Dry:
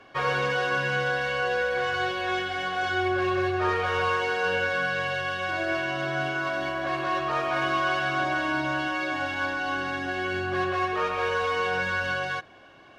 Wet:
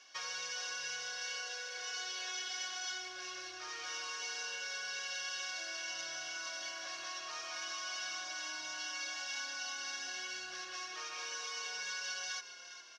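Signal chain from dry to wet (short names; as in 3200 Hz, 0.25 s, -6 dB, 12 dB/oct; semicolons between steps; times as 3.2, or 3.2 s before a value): compressor, threshold -30 dBFS, peak gain reduction 8.5 dB; band-pass 5800 Hz, Q 6.5; frequency-shifting echo 0.411 s, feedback 48%, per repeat -32 Hz, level -12.5 dB; gain +17 dB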